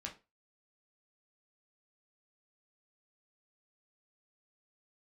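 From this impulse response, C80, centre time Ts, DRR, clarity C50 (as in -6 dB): 20.0 dB, 16 ms, -0.5 dB, 13.0 dB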